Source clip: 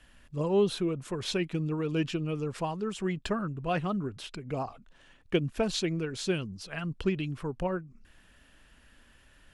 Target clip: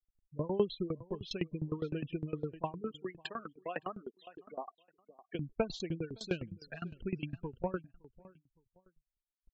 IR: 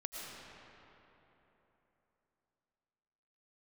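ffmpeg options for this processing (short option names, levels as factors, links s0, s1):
-filter_complex "[0:a]asettb=1/sr,asplit=3[s0][s1][s2];[s0]atrim=end=2.914[s3];[s1]atrim=start=2.91:end=5.35,asetpts=PTS-STARTPTS,afade=t=in:d=0.004:c=qsin,afade=t=out:st=2.436:d=0.004:c=qsin,highpass=390[s4];[s2]atrim=start=5.346[s5];[s3][s4]acrossfade=d=0.004:c1=hsin:c2=qsin[s6];[s6][s5]acrossfade=d=0.004:c1=qsin:c2=hsin,afftfilt=real='re*gte(hypot(re,im),0.0251)':imag='im*gte(hypot(re,im),0.0251)':win_size=1024:overlap=0.75,asplit=2[s7][s8];[s8]adelay=564,lowpass=f=3800:p=1,volume=0.126,asplit=2[s9][s10];[s10]adelay=564,lowpass=f=3800:p=1,volume=0.22[s11];[s7][s9][s11]amix=inputs=3:normalize=0,aeval=exprs='val(0)*pow(10,-21*if(lt(mod(9.8*n/s,1),2*abs(9.8)/1000),1-mod(9.8*n/s,1)/(2*abs(9.8)/1000),(mod(9.8*n/s,1)-2*abs(9.8)/1000)/(1-2*abs(9.8)/1000))/20)':c=same"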